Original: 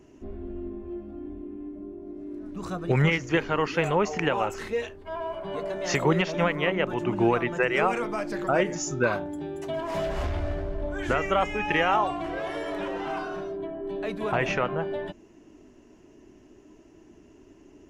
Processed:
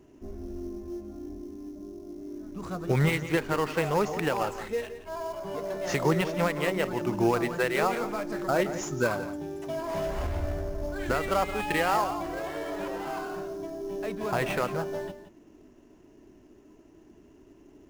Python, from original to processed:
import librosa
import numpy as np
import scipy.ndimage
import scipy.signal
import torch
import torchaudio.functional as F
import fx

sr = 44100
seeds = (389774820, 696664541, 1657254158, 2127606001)

p1 = fx.sample_hold(x, sr, seeds[0], rate_hz=5900.0, jitter_pct=20)
p2 = x + (p1 * librosa.db_to_amplitude(-4.5))
p3 = p2 + 10.0 ** (-12.5 / 20.0) * np.pad(p2, (int(172 * sr / 1000.0), 0))[:len(p2)]
y = p3 * librosa.db_to_amplitude(-6.0)